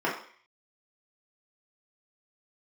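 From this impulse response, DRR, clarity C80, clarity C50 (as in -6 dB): -6.5 dB, 10.0 dB, 6.5 dB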